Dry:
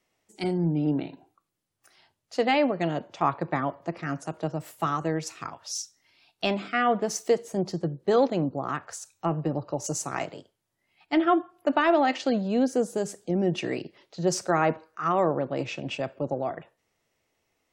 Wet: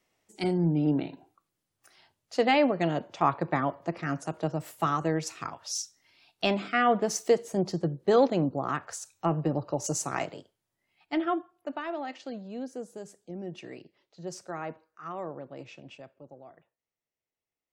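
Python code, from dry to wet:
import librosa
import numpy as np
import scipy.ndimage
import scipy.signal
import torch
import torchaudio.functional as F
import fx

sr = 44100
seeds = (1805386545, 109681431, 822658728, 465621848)

y = fx.gain(x, sr, db=fx.line((10.1, 0.0), (11.25, -6.0), (11.84, -13.5), (15.8, -13.5), (16.24, -20.0)))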